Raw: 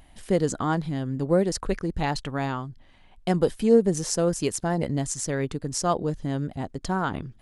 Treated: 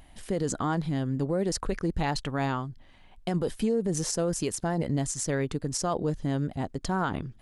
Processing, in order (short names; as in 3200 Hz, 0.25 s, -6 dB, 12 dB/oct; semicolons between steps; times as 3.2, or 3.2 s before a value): limiter -18.5 dBFS, peak gain reduction 11 dB